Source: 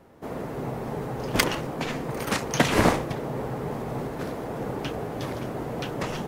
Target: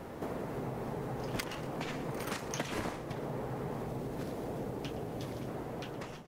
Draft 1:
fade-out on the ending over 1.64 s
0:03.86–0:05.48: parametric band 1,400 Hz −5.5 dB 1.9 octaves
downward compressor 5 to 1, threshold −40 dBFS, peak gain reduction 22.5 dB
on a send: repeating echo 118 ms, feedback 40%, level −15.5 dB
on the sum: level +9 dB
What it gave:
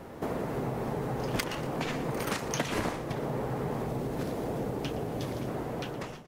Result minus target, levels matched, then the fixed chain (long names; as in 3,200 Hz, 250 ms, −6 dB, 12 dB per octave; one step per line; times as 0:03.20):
downward compressor: peak gain reduction −5.5 dB
fade-out on the ending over 1.64 s
0:03.86–0:05.48: parametric band 1,400 Hz −5.5 dB 1.9 octaves
downward compressor 5 to 1, threshold −47 dBFS, peak gain reduction 28 dB
on a send: repeating echo 118 ms, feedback 40%, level −15.5 dB
on the sum: level +9 dB